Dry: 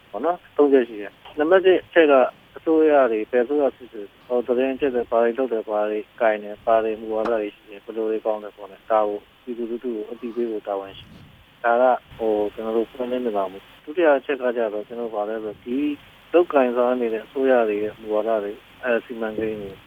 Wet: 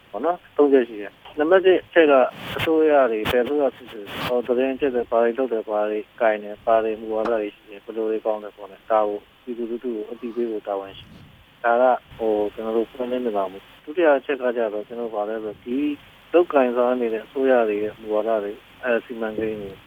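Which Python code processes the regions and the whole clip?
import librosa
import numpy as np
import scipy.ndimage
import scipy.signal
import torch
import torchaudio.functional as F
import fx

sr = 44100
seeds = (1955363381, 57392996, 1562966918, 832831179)

y = fx.chain(x, sr, fx.highpass(hz=89.0, slope=12),
    fx.peak_eq(hz=360.0, db=-6.0, octaves=0.28),
    fx.pre_swell(db_per_s=62.0), at=(2.07, 4.49))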